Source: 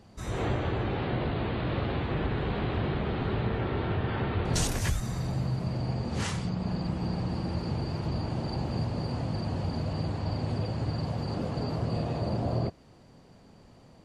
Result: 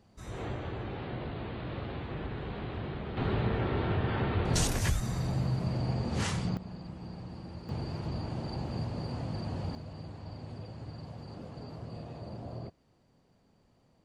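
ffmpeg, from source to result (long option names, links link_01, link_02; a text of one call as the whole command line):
ffmpeg -i in.wav -af "asetnsamples=nb_out_samples=441:pad=0,asendcmd='3.17 volume volume -0.5dB;6.57 volume volume -12dB;7.69 volume volume -4.5dB;9.75 volume volume -12.5dB',volume=-8dB" out.wav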